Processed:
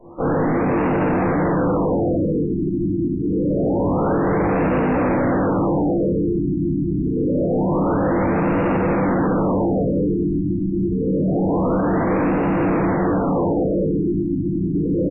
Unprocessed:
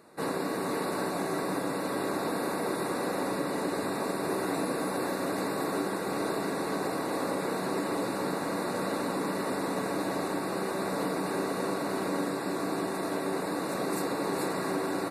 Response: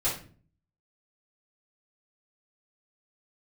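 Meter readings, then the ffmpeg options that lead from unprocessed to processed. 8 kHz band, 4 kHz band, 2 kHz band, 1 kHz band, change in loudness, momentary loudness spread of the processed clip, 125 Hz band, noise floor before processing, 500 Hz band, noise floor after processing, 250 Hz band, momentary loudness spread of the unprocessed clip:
below −40 dB, below −15 dB, +5.0 dB, +8.0 dB, +11.5 dB, 3 LU, +19.0 dB, −33 dBFS, +10.5 dB, −22 dBFS, +14.0 dB, 1 LU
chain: -filter_complex "[0:a]asplit=2[link_01][link_02];[link_02]aeval=exprs='sgn(val(0))*max(abs(val(0))-0.00355,0)':channel_layout=same,volume=-5dB[link_03];[link_01][link_03]amix=inputs=2:normalize=0,aemphasis=mode=reproduction:type=bsi,aecho=1:1:20|32|47:0.562|0.501|0.335,acrossover=split=730|1500[link_04][link_05][link_06];[link_05]acompressor=mode=upward:threshold=-55dB:ratio=2.5[link_07];[link_06]alimiter=level_in=13.5dB:limit=-24dB:level=0:latency=1,volume=-13.5dB[link_08];[link_04][link_07][link_08]amix=inputs=3:normalize=0[link_09];[1:a]atrim=start_sample=2205[link_10];[link_09][link_10]afir=irnorm=-1:irlink=0,volume=16.5dB,asoftclip=hard,volume=-16.5dB,afftfilt=real='re*lt(b*sr/1024,370*pow(2900/370,0.5+0.5*sin(2*PI*0.26*pts/sr)))':imag='im*lt(b*sr/1024,370*pow(2900/370,0.5+0.5*sin(2*PI*0.26*pts/sr)))':win_size=1024:overlap=0.75"

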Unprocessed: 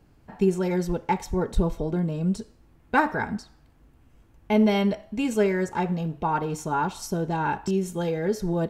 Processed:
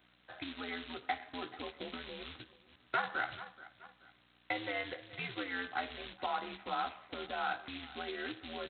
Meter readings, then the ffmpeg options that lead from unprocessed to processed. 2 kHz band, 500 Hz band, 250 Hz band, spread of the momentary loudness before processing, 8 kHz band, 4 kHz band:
−6.0 dB, −18.0 dB, −22.0 dB, 6 LU, below −40 dB, −2.5 dB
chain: -filter_complex "[0:a]highpass=frequency=160:width_type=q:width=0.5412,highpass=frequency=160:width_type=q:width=1.307,lowpass=frequency=2300:width_type=q:width=0.5176,lowpass=frequency=2300:width_type=q:width=0.7071,lowpass=frequency=2300:width_type=q:width=1.932,afreqshift=-110,asplit=2[link_01][link_02];[link_02]adelay=16,volume=-7dB[link_03];[link_01][link_03]amix=inputs=2:normalize=0,aecho=1:1:429|858:0.0708|0.0262,aeval=exprs='val(0)+0.00282*(sin(2*PI*60*n/s)+sin(2*PI*2*60*n/s)/2+sin(2*PI*3*60*n/s)/3+sin(2*PI*4*60*n/s)/4+sin(2*PI*5*60*n/s)/5)':channel_layout=same,acrossover=split=250|1600[link_04][link_05][link_06];[link_04]alimiter=level_in=0.5dB:limit=-24dB:level=0:latency=1:release=14,volume=-0.5dB[link_07];[link_07][link_05][link_06]amix=inputs=3:normalize=0,bandreject=frequency=880:width=13,aresample=8000,acrusher=bits=5:mode=log:mix=0:aa=0.000001,aresample=44100,tremolo=f=80:d=0.4,acompressor=threshold=-28dB:ratio=6,aderivative,volume=15dB"

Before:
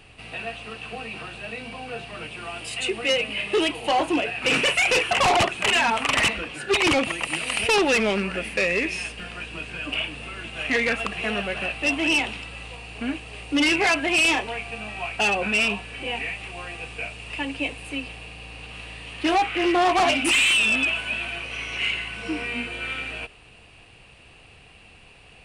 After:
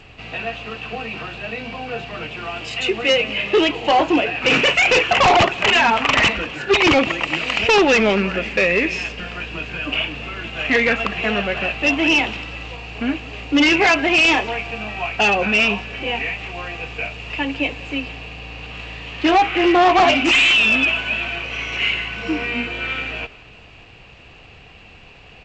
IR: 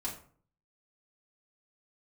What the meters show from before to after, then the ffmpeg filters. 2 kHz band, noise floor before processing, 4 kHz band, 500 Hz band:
+5.5 dB, −50 dBFS, +5.0 dB, +6.5 dB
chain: -af "highshelf=frequency=6000:gain=-8.5,aecho=1:1:181|362|543|724:0.0708|0.0425|0.0255|0.0153,volume=6.5dB" -ar 16000 -c:a g722

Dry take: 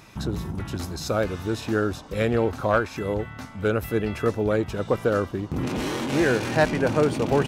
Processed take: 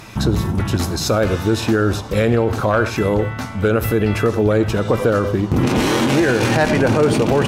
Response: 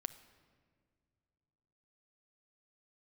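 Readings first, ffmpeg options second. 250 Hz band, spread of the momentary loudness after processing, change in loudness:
+8.5 dB, 5 LU, +7.5 dB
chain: -filter_complex "[1:a]atrim=start_sample=2205,atrim=end_sample=3969,asetrate=31752,aresample=44100[link_01];[0:a][link_01]afir=irnorm=-1:irlink=0,alimiter=level_in=17.5dB:limit=-1dB:release=50:level=0:latency=1,volume=-5.5dB"

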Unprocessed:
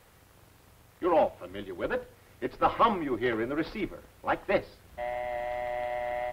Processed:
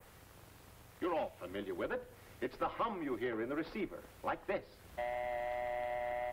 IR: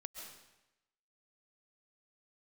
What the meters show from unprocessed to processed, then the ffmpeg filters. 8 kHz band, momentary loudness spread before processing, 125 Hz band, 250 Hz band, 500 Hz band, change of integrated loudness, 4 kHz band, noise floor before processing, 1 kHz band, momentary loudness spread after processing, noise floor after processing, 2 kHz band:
can't be measured, 13 LU, −9.0 dB, −8.0 dB, −8.5 dB, −9.0 dB, −9.5 dB, −59 dBFS, −10.0 dB, 20 LU, −59 dBFS, −8.0 dB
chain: -filter_complex "[0:a]acrossover=split=190|1600[link_01][link_02][link_03];[link_01]acompressor=threshold=-56dB:ratio=4[link_04];[link_02]acompressor=threshold=-37dB:ratio=4[link_05];[link_03]acompressor=threshold=-48dB:ratio=4[link_06];[link_04][link_05][link_06]amix=inputs=3:normalize=0,adynamicequalizer=threshold=0.00112:dfrequency=4300:dqfactor=0.79:tfrequency=4300:tqfactor=0.79:attack=5:release=100:ratio=0.375:range=2:mode=cutabove:tftype=bell"

